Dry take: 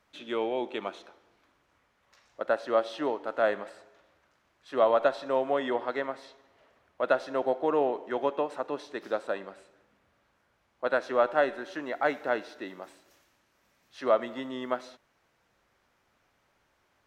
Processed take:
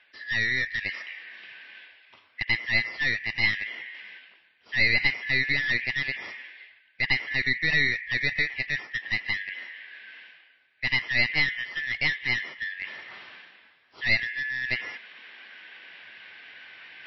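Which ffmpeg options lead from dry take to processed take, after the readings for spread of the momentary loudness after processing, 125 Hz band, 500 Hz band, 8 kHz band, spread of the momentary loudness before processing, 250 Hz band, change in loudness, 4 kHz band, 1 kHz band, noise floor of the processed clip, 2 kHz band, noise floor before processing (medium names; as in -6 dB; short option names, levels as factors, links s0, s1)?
22 LU, +15.5 dB, -18.0 dB, no reading, 12 LU, -5.5 dB, +4.0 dB, +14.0 dB, -14.0 dB, -62 dBFS, +14.5 dB, -72 dBFS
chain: -filter_complex "[0:a]afftfilt=real='real(if(lt(b,272),68*(eq(floor(b/68),0)*3+eq(floor(b/68),1)*0+eq(floor(b/68),2)*1+eq(floor(b/68),3)*2)+mod(b,68),b),0)':imag='imag(if(lt(b,272),68*(eq(floor(b/68),0)*3+eq(floor(b/68),1)*0+eq(floor(b/68),2)*1+eq(floor(b/68),3)*2)+mod(b,68),b),0)':win_size=2048:overlap=0.75,highpass=f=130:p=1,lowshelf=f=400:g=-6.5,asplit=2[s0][s1];[s1]alimiter=limit=0.112:level=0:latency=1:release=62,volume=0.794[s2];[s0][s2]amix=inputs=2:normalize=0,lowpass=2100,aeval=exprs='clip(val(0),-1,0.0282)':c=same,areverse,acompressor=mode=upward:threshold=0.0224:ratio=2.5,areverse,volume=1.58" -ar 16000 -c:a libmp3lame -b:a 24k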